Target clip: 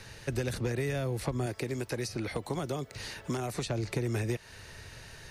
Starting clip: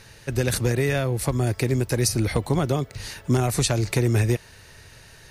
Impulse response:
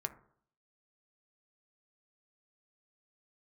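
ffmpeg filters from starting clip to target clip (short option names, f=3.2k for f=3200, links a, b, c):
-filter_complex "[0:a]highshelf=f=11k:g=-8,acrossover=split=180|650|4800[a][b][c][d];[a]acompressor=threshold=-37dB:ratio=4[e];[b]acompressor=threshold=-34dB:ratio=4[f];[c]acompressor=threshold=-41dB:ratio=4[g];[d]acompressor=threshold=-49dB:ratio=4[h];[e][f][g][h]amix=inputs=4:normalize=0,asettb=1/sr,asplit=3[i][j][k];[i]atrim=end=1.464[l];[j]atrim=start=1.46:end=3.67,asetpts=PTS-STARTPTS,afade=t=in:d=0.004:c=qsin,afade=t=out:st=2.206:d=0.004:c=qsin,lowshelf=f=150:g=-8[m];[k]atrim=start=3.666[n];[l][m]acrossfade=d=0.004:c1=hsin:c2=qsin[o];[o][n]acrossfade=d=0.004:c1=qsin:c2=hsin"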